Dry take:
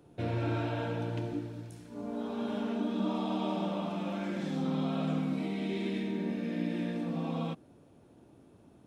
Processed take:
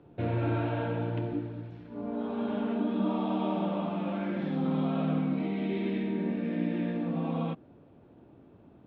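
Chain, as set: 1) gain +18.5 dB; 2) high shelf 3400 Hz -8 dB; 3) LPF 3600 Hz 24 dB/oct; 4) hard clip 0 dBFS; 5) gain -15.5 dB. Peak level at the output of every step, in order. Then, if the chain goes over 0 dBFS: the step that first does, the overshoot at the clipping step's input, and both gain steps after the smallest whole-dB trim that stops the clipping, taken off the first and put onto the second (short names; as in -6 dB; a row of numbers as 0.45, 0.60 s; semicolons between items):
-3.0, -3.0, -3.0, -3.0, -18.5 dBFS; no overload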